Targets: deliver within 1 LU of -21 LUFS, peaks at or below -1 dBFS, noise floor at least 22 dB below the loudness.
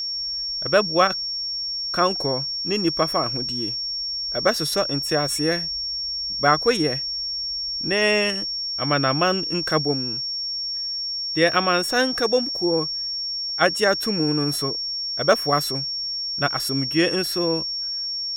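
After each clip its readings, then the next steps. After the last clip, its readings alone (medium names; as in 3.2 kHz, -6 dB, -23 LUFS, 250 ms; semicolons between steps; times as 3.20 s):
steady tone 5.5 kHz; tone level -25 dBFS; loudness -21.5 LUFS; peak level -3.0 dBFS; loudness target -21.0 LUFS
-> band-stop 5.5 kHz, Q 30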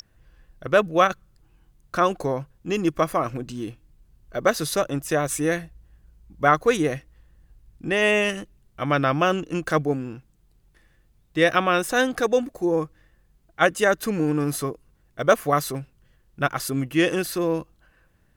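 steady tone not found; loudness -23.0 LUFS; peak level -3.5 dBFS; loudness target -21.0 LUFS
-> trim +2 dB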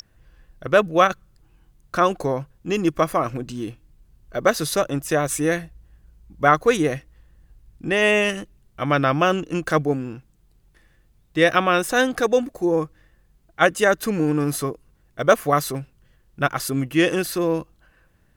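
loudness -21.0 LUFS; peak level -1.5 dBFS; noise floor -60 dBFS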